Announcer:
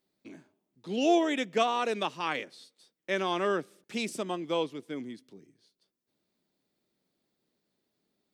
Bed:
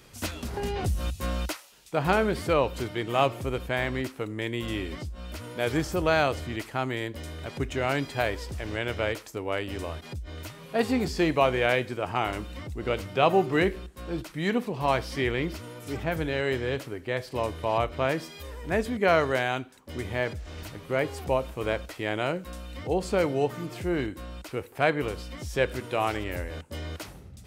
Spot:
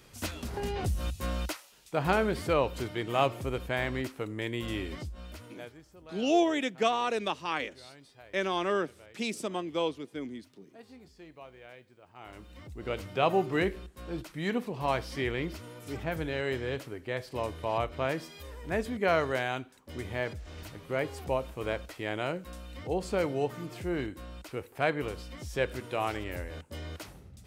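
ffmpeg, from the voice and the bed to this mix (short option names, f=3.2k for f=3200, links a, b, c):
-filter_complex "[0:a]adelay=5250,volume=-0.5dB[a];[1:a]volume=19dB,afade=t=out:st=5.08:d=0.65:silence=0.0668344,afade=t=in:st=12.14:d=0.94:silence=0.0794328[b];[a][b]amix=inputs=2:normalize=0"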